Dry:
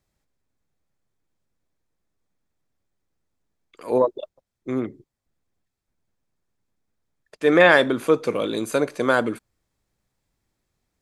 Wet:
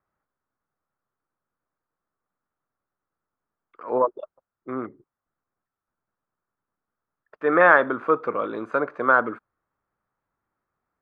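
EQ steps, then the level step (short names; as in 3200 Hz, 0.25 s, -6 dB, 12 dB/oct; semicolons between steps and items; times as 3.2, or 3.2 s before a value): synth low-pass 1300 Hz, resonance Q 3.3; low shelf 81 Hz -8.5 dB; low shelf 390 Hz -5 dB; -2.5 dB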